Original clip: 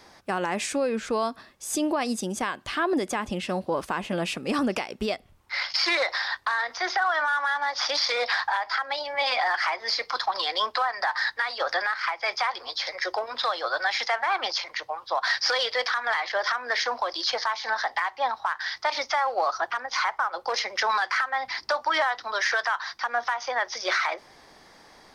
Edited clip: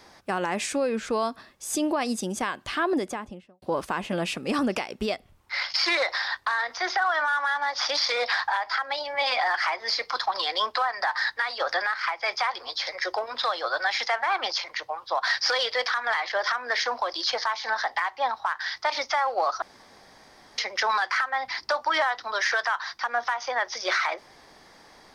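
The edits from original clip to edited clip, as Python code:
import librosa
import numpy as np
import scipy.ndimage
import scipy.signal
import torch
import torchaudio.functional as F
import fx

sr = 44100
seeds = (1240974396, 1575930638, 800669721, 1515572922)

y = fx.studio_fade_out(x, sr, start_s=2.86, length_s=0.76)
y = fx.edit(y, sr, fx.room_tone_fill(start_s=19.62, length_s=0.96), tone=tone)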